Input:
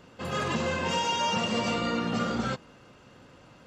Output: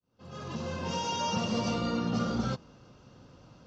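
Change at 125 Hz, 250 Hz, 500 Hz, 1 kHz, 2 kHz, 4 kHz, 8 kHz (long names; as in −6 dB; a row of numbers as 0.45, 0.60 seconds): +0.5, −1.0, −4.5, −5.0, −9.0, −5.5, −3.0 decibels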